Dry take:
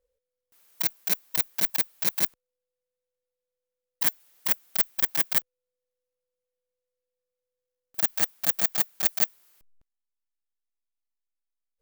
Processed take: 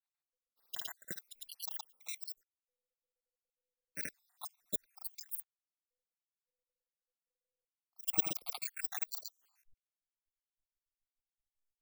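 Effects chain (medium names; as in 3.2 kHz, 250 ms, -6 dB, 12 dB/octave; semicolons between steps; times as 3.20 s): random holes in the spectrogram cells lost 71%; level held to a coarse grid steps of 12 dB; granulator 100 ms, grains 20 per s, spray 100 ms, pitch spread up and down by 0 st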